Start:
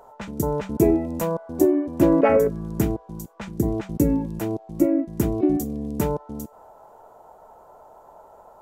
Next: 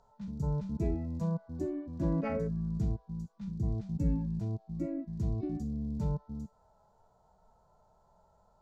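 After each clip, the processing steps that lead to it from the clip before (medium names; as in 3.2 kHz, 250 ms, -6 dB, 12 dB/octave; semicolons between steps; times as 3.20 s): harmonic-percussive split percussive -15 dB; FFT filter 190 Hz 0 dB, 310 Hz -18 dB, 2.9 kHz -14 dB, 4.3 kHz -2 dB, 6.5 kHz -8 dB, 14 kHz -28 dB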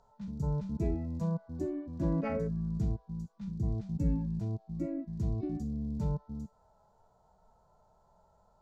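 no audible change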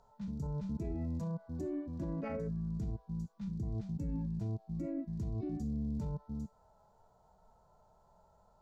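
peak limiter -31 dBFS, peak gain reduction 10.5 dB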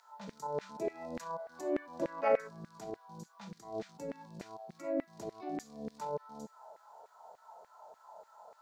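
LFO high-pass saw down 3.4 Hz 440–2000 Hz; trim +9.5 dB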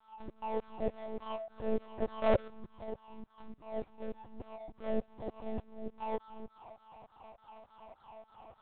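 median filter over 25 samples; monotone LPC vocoder at 8 kHz 220 Hz; trim +2.5 dB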